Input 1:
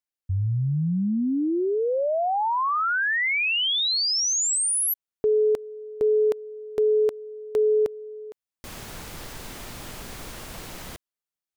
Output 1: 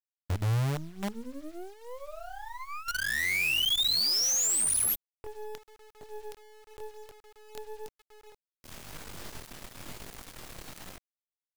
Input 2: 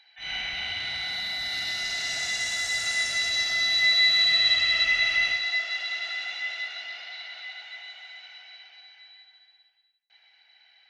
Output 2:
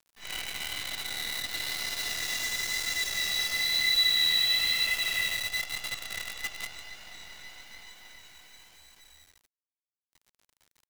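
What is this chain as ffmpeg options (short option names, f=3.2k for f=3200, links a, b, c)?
-filter_complex "[0:a]acrossover=split=130|2100[a][b][c];[b]acompressor=threshold=-34dB:ratio=10:attack=1.8:release=959:knee=1:detection=rms[d];[a][d][c]amix=inputs=3:normalize=0,flanger=delay=19.5:depth=6.5:speed=1,acrusher=bits=6:dc=4:mix=0:aa=0.000001"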